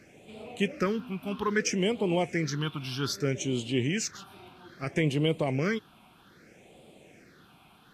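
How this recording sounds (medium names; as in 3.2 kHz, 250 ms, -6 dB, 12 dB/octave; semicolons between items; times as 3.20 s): phasing stages 6, 0.62 Hz, lowest notch 480–1600 Hz; a quantiser's noise floor 12-bit, dither none; Vorbis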